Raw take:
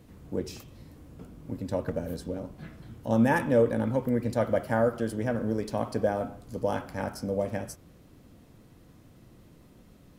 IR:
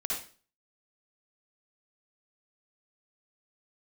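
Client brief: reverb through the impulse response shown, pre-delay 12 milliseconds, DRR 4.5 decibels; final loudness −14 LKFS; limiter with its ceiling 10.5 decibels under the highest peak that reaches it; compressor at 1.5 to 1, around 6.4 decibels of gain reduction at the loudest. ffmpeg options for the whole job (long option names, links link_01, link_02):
-filter_complex "[0:a]acompressor=threshold=-35dB:ratio=1.5,alimiter=level_in=3.5dB:limit=-24dB:level=0:latency=1,volume=-3.5dB,asplit=2[link_01][link_02];[1:a]atrim=start_sample=2205,adelay=12[link_03];[link_02][link_03]afir=irnorm=-1:irlink=0,volume=-9dB[link_04];[link_01][link_04]amix=inputs=2:normalize=0,volume=24dB"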